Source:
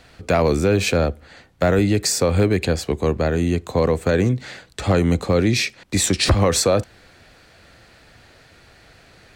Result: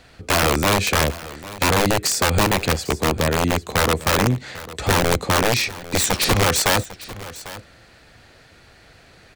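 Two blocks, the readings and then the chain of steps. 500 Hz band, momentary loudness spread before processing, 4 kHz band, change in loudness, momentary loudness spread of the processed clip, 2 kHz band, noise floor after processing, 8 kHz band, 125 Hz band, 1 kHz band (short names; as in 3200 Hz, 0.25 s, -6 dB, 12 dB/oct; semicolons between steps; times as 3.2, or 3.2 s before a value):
-3.0 dB, 6 LU, +4.0 dB, +0.5 dB, 16 LU, +5.5 dB, -50 dBFS, +2.5 dB, -2.5 dB, +6.0 dB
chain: wrapped overs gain 11 dB; echo 0.798 s -17 dB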